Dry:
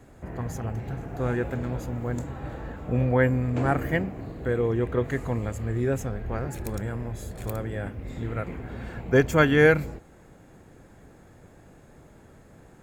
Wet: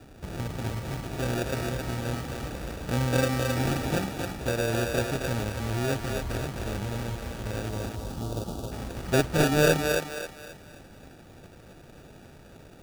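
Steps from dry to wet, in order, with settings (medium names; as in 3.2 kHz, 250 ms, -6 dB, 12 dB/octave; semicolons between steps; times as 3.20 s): CVSD coder 16 kbps; in parallel at -0.5 dB: compression, threshold -35 dBFS, peak gain reduction 19 dB; on the sum: sample-and-hold 42×; 7.69–8.72 s: Butterworth band-stop 2 kHz, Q 0.94; on a send: thinning echo 266 ms, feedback 39%, high-pass 380 Hz, level -3 dB; on the sum: trim -4 dB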